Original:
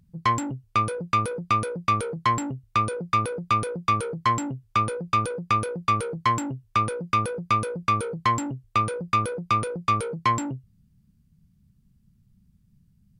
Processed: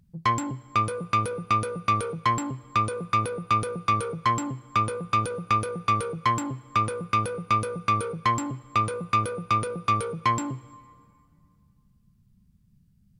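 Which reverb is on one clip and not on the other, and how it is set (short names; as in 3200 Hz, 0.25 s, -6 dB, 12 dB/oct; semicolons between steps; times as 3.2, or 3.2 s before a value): plate-style reverb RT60 2.3 s, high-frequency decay 0.75×, DRR 18.5 dB; gain -1 dB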